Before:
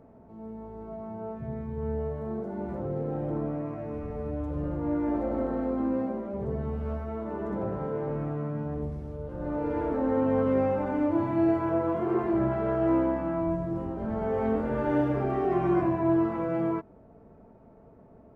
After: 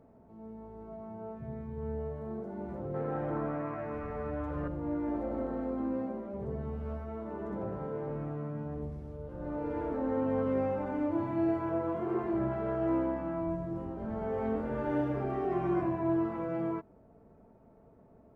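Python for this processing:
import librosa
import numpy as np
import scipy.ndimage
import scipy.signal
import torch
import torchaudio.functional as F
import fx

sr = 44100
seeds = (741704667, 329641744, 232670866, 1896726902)

y = fx.peak_eq(x, sr, hz=1500.0, db=14.0, octaves=1.9, at=(2.94, 4.68))
y = y * librosa.db_to_amplitude(-5.5)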